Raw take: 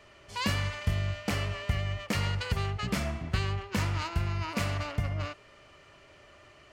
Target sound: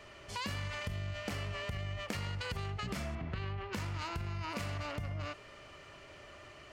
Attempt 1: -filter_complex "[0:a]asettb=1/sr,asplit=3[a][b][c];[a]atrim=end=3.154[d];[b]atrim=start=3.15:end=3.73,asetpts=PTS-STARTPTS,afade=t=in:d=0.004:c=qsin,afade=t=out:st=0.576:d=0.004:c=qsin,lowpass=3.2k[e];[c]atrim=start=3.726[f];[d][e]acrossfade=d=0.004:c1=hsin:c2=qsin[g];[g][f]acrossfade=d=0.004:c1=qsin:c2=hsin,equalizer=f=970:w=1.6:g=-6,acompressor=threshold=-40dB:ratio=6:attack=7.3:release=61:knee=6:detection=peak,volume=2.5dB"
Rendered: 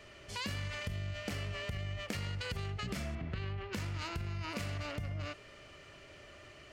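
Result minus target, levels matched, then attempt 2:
1000 Hz band -3.5 dB
-filter_complex "[0:a]asettb=1/sr,asplit=3[a][b][c];[a]atrim=end=3.154[d];[b]atrim=start=3.15:end=3.73,asetpts=PTS-STARTPTS,afade=t=in:d=0.004:c=qsin,afade=t=out:st=0.576:d=0.004:c=qsin,lowpass=3.2k[e];[c]atrim=start=3.726[f];[d][e]acrossfade=d=0.004:c1=hsin:c2=qsin[g];[g][f]acrossfade=d=0.004:c1=qsin:c2=hsin,acompressor=threshold=-40dB:ratio=6:attack=7.3:release=61:knee=6:detection=peak,volume=2.5dB"

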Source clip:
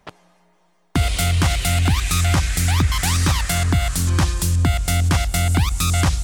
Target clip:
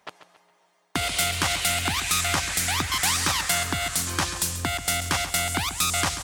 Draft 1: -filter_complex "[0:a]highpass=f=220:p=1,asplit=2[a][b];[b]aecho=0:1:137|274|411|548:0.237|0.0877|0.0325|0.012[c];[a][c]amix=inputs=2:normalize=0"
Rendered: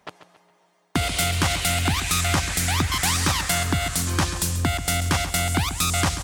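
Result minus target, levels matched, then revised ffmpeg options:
250 Hz band +5.0 dB
-filter_complex "[0:a]highpass=f=650:p=1,asplit=2[a][b];[b]aecho=0:1:137|274|411|548:0.237|0.0877|0.0325|0.012[c];[a][c]amix=inputs=2:normalize=0"

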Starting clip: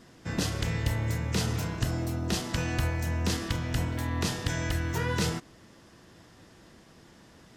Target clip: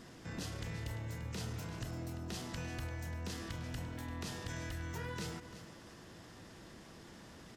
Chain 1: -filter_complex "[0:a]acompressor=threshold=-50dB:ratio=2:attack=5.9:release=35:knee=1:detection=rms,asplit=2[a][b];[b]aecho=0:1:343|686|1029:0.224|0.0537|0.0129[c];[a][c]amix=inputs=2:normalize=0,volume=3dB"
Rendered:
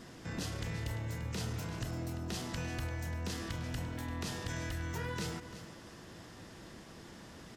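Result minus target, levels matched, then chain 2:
compressor: peak gain reduction -3.5 dB
-filter_complex "[0:a]acompressor=threshold=-57dB:ratio=2:attack=5.9:release=35:knee=1:detection=rms,asplit=2[a][b];[b]aecho=0:1:343|686|1029:0.224|0.0537|0.0129[c];[a][c]amix=inputs=2:normalize=0,volume=3dB"

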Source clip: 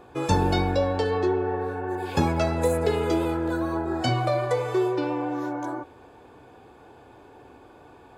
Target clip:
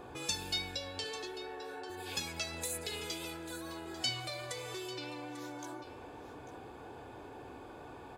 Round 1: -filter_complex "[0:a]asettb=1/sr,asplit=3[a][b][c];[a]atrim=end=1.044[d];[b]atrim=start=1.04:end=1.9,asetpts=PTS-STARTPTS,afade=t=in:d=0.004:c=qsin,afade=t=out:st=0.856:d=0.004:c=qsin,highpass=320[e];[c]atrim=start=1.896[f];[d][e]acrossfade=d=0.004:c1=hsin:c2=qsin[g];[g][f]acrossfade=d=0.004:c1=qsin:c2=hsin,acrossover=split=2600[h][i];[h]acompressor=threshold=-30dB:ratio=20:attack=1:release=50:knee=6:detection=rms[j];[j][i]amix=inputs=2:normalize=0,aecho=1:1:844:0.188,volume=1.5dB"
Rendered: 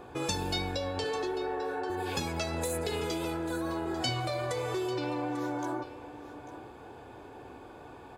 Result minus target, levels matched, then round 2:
compressor: peak gain reduction -11.5 dB
-filter_complex "[0:a]asettb=1/sr,asplit=3[a][b][c];[a]atrim=end=1.044[d];[b]atrim=start=1.04:end=1.9,asetpts=PTS-STARTPTS,afade=t=in:d=0.004:c=qsin,afade=t=out:st=0.856:d=0.004:c=qsin,highpass=320[e];[c]atrim=start=1.896[f];[d][e]acrossfade=d=0.004:c1=hsin:c2=qsin[g];[g][f]acrossfade=d=0.004:c1=qsin:c2=hsin,acrossover=split=2600[h][i];[h]acompressor=threshold=-42dB:ratio=20:attack=1:release=50:knee=6:detection=rms[j];[j][i]amix=inputs=2:normalize=0,aecho=1:1:844:0.188,volume=1.5dB"

